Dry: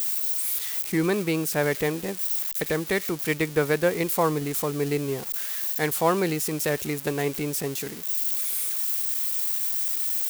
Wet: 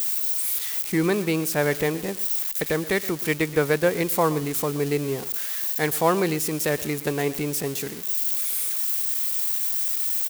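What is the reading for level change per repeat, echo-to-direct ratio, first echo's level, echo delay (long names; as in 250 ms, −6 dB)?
−14.0 dB, −17.5 dB, −17.5 dB, 123 ms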